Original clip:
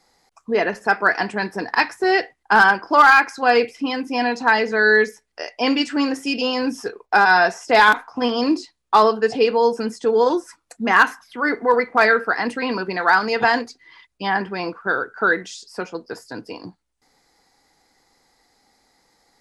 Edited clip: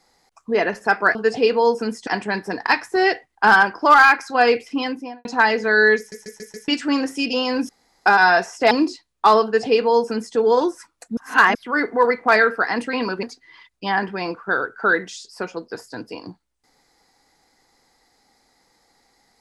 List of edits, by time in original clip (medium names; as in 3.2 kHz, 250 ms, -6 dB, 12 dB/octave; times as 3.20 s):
3.91–4.33 s: studio fade out
5.06 s: stutter in place 0.14 s, 5 plays
6.77–7.14 s: room tone
7.79–8.40 s: delete
9.13–10.05 s: copy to 1.15 s
10.86–11.24 s: reverse
12.92–13.61 s: delete